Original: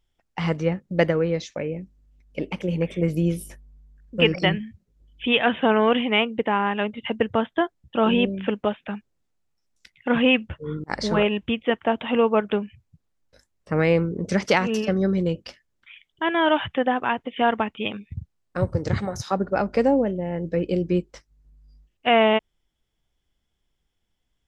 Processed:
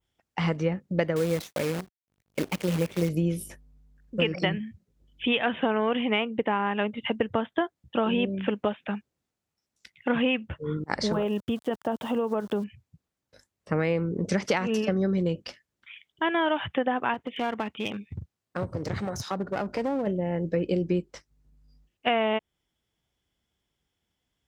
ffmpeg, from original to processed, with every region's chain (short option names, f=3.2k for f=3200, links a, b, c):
-filter_complex "[0:a]asettb=1/sr,asplit=3[a][b][c];[a]atrim=end=1.164[d];[b]atrim=start=1.16:end=3.09,asetpts=PTS-STARTPTS,afade=t=in:d=0.004:c=qsin,afade=t=out:st=1.926:d=0.004:c=qsin,acrusher=bits=6:dc=4:mix=0:aa=0.000001,agate=range=-33dB:threshold=-46dB:ratio=3:release=100:detection=peak[e];[c]atrim=start=3.086[f];[d][e]acrossfade=d=0.004:c1=hsin:c2=qsin[g];[g][f]acrossfade=d=0.004:c1=qsin:c2=hsin,asettb=1/sr,asplit=3[h][i][j];[h]atrim=end=11.124[k];[i]atrim=start=11.12:end=12.64,asetpts=PTS-STARTPTS,afade=t=in:d=0.004:c=qsin,afade=t=out:st=1.516:d=0.004:c=qsin,aeval=exprs='val(0)*gte(abs(val(0)),0.00841)':c=same,equalizer=f=2.3k:w=1.5:g=-13,acompressor=threshold=-22dB:ratio=4:attack=3.2:release=140:knee=1:detection=peak[l];[j]atrim=start=12.636[m];[k][l]acrossfade=d=0.004:c1=hsin:c2=qsin[n];[n][m]acrossfade=d=0.004:c1=qsin:c2=hsin,asettb=1/sr,asplit=3[o][p][q];[o]atrim=end=17.144[r];[p]atrim=start=17.14:end=20.07,asetpts=PTS-STARTPTS,afade=t=in:d=0.004:c=qsin,afade=t=out:st=2.926:d=0.004:c=qsin,highpass=47,acompressor=threshold=-27dB:ratio=2:attack=3.2:release=140:knee=1:detection=peak,aeval=exprs='clip(val(0),-1,0.0299)':c=same[s];[q]atrim=start=20.066[t];[r][s]acrossfade=d=0.004:c1=hsin:c2=qsin[u];[u][t]acrossfade=d=0.004:c1=qsin:c2=hsin,highpass=72,adynamicequalizer=threshold=0.01:dfrequency=4800:dqfactor=0.89:tfrequency=4800:tqfactor=0.89:attack=5:release=100:ratio=0.375:range=2:mode=cutabove:tftype=bell,acompressor=threshold=-21dB:ratio=6"